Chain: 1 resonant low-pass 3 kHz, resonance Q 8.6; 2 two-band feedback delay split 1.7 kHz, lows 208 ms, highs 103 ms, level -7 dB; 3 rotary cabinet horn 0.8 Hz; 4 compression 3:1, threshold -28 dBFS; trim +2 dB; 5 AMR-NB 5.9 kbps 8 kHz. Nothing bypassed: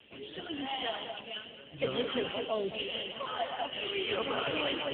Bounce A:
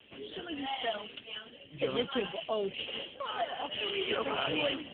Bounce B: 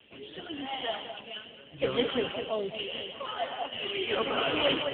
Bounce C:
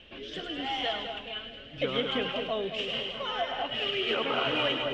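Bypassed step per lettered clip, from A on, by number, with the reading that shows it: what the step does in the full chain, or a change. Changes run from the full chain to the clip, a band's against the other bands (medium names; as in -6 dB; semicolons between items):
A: 2, momentary loudness spread change +2 LU; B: 4, momentary loudness spread change +5 LU; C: 5, loudness change +4.0 LU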